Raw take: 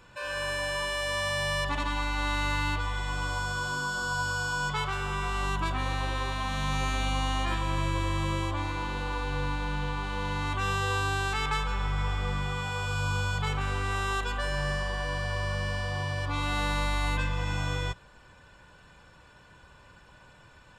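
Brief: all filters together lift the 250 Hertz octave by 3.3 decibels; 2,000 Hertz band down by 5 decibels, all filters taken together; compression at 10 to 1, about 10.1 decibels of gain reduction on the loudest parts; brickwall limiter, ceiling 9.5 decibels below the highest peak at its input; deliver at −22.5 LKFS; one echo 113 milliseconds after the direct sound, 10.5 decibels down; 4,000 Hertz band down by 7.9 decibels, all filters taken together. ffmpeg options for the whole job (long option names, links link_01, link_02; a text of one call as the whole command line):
ffmpeg -i in.wav -af "equalizer=frequency=250:width_type=o:gain=5,equalizer=frequency=2000:width_type=o:gain=-5.5,equalizer=frequency=4000:width_type=o:gain=-8.5,acompressor=threshold=-35dB:ratio=10,alimiter=level_in=13dB:limit=-24dB:level=0:latency=1,volume=-13dB,aecho=1:1:113:0.299,volume=23.5dB" out.wav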